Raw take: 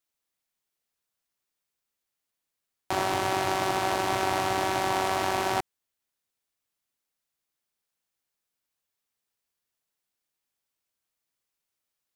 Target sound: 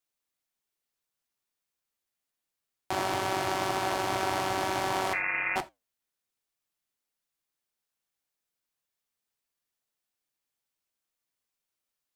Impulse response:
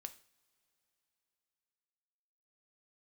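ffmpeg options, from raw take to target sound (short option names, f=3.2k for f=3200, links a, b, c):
-filter_complex "[0:a]asettb=1/sr,asplit=3[a][b][c];[a]atrim=end=5.134[d];[b]atrim=start=5.13:end=5.56,asetpts=PTS-STARTPTS,afade=t=in:d=0.004:c=qsin,afade=t=out:st=0.426:d=0.004:c=qsin,lowpass=f=2.4k:t=q:w=0.5098,lowpass=f=2.4k:t=q:w=0.6013,lowpass=f=2.4k:t=q:w=0.9,lowpass=f=2.4k:t=q:w=2.563,afreqshift=-2800[e];[c]atrim=start=5.556[f];[d][e]acrossfade=d=0.004:c1=hsin:c2=qsin[g];[g][f]acrossfade=d=0.004:c1=qsin:c2=hsin,asplit=2[h][i];[1:a]atrim=start_sample=2205,atrim=end_sample=3969[j];[i][j]afir=irnorm=-1:irlink=0,volume=10.5dB[k];[h][k]amix=inputs=2:normalize=0,flanger=delay=5.2:depth=5.4:regen=-75:speed=1.8:shape=triangular,volume=-7dB"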